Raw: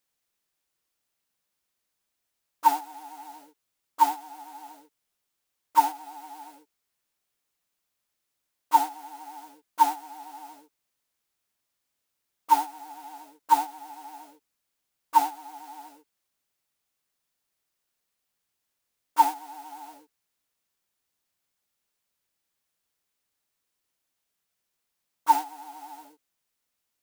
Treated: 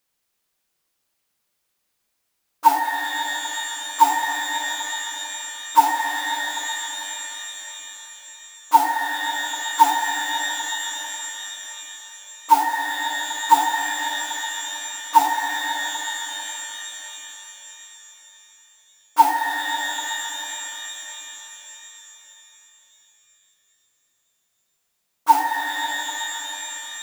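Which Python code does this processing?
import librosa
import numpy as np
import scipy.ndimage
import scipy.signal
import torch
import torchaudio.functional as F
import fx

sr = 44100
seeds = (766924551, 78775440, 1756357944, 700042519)

y = fx.rev_shimmer(x, sr, seeds[0], rt60_s=4.0, semitones=12, shimmer_db=-2, drr_db=4.0)
y = y * 10.0 ** (5.0 / 20.0)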